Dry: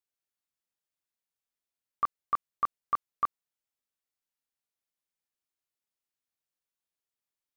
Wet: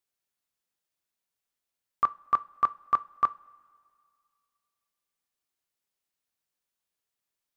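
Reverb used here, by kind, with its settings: two-slope reverb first 0.31 s, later 2.2 s, from -18 dB, DRR 14.5 dB; gain +4 dB

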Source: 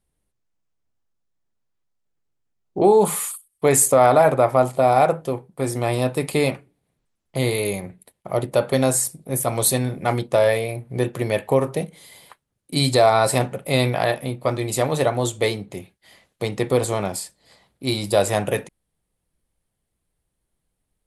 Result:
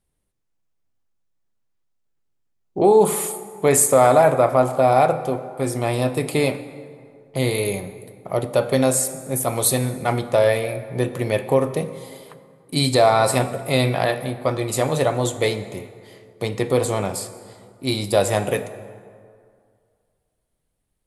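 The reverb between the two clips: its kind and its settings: plate-style reverb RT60 2.2 s, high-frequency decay 0.55×, DRR 11 dB

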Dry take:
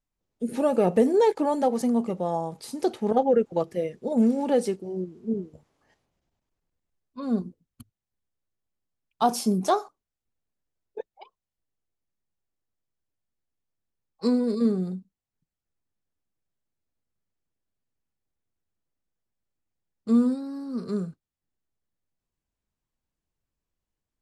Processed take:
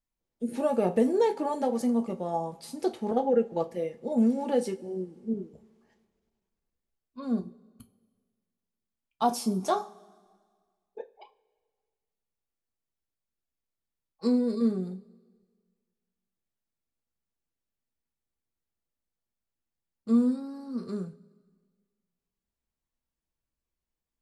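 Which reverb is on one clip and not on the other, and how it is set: two-slope reverb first 0.21 s, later 1.7 s, from -22 dB, DRR 5.5 dB; gain -5 dB

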